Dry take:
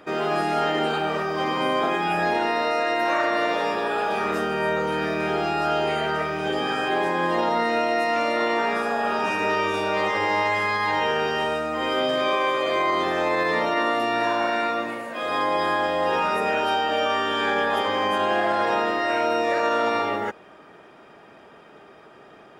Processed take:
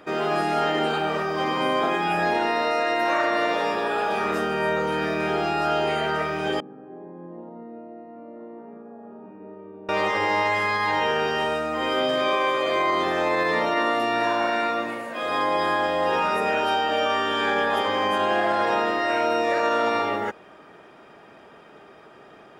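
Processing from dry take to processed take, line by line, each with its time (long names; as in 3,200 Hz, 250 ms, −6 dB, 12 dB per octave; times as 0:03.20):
0:06.60–0:09.89: four-pole ladder band-pass 230 Hz, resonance 25%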